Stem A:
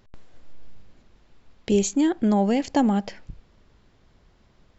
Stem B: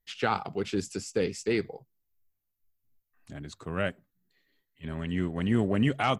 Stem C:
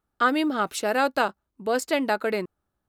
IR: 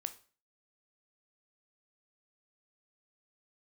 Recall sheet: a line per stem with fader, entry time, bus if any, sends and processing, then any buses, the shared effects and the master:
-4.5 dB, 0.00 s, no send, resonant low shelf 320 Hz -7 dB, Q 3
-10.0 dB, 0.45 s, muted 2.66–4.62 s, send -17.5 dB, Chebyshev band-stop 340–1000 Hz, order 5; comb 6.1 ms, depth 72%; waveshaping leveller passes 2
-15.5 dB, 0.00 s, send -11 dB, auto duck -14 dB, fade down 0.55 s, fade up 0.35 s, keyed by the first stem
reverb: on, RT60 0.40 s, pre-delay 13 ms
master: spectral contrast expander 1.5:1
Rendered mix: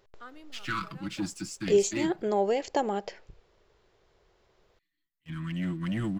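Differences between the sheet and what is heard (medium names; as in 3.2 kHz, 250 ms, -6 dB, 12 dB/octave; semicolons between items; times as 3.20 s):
stem C -15.5 dB -> -22.5 dB; master: missing spectral contrast expander 1.5:1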